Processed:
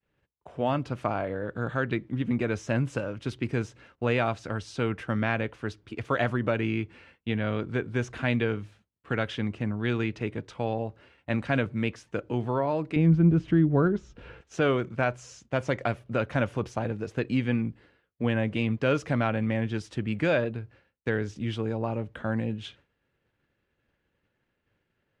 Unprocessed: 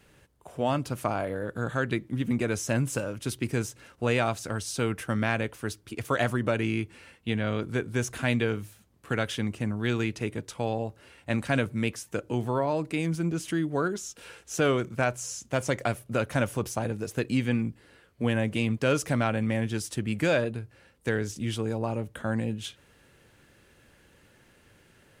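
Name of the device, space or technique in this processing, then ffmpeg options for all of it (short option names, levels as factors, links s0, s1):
hearing-loss simulation: -filter_complex "[0:a]asettb=1/sr,asplit=3[s0][s1][s2];[s0]atrim=end=12.964[s3];[s1]atrim=start=12.96:end=14.41,asetpts=PTS-STARTPTS,afade=t=in:d=0.004:c=qsin,afade=t=out:st=1.446:d=0.004:c=qsin,aemphasis=mode=reproduction:type=riaa[s4];[s2]atrim=start=14.406[s5];[s3][s4]acrossfade=d=0.004:c1=hsin:c2=qsin[s6];[s6][s5]acrossfade=d=0.004:c1=qsin:c2=hsin,lowpass=3400,agate=range=0.0224:threshold=0.00398:ratio=3:detection=peak"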